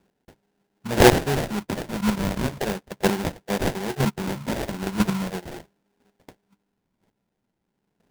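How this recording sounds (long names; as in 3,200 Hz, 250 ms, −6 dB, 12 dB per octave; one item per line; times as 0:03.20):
phaser sweep stages 6, 0.38 Hz, lowest notch 440–1,300 Hz
aliases and images of a low sample rate 1,200 Hz, jitter 20%
chopped level 1 Hz, depth 65%, duty 10%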